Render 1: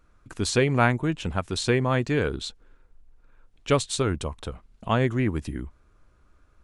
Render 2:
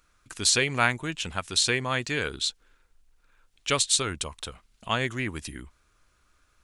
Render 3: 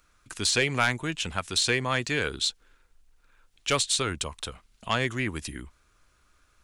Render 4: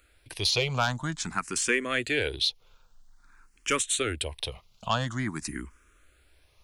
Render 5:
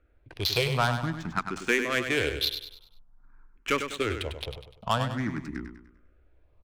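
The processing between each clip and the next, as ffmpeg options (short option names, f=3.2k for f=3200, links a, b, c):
-af "tiltshelf=f=1.4k:g=-9"
-filter_complex "[0:a]acrossover=split=390|3700[a][b][c];[c]alimiter=limit=-18.5dB:level=0:latency=1:release=79[d];[a][b][d]amix=inputs=3:normalize=0,aeval=exprs='0.501*sin(PI/2*1.78*val(0)/0.501)':c=same,volume=-7.5dB"
-filter_complex "[0:a]asplit=2[a][b];[b]acompressor=threshold=-35dB:ratio=6,volume=-1dB[c];[a][c]amix=inputs=2:normalize=0,asplit=2[d][e];[e]afreqshift=0.49[f];[d][f]amix=inputs=2:normalize=1"
-filter_complex "[0:a]adynamicsmooth=sensitivity=2.5:basefreq=990,asplit=2[a][b];[b]aecho=0:1:99|198|297|396|495:0.398|0.159|0.0637|0.0255|0.0102[c];[a][c]amix=inputs=2:normalize=0,volume=1dB"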